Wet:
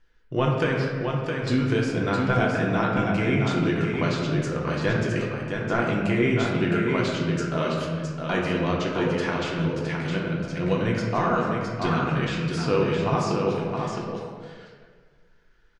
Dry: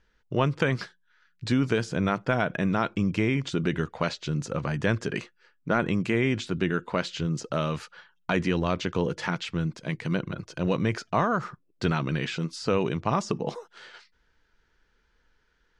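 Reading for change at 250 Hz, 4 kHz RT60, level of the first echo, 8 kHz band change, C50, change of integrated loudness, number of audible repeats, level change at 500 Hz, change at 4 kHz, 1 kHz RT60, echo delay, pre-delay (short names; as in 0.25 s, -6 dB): +3.0 dB, 0.95 s, -5.0 dB, +0.5 dB, -1.0 dB, +3.0 dB, 1, +4.5 dB, +2.0 dB, 1.4 s, 0.663 s, 3 ms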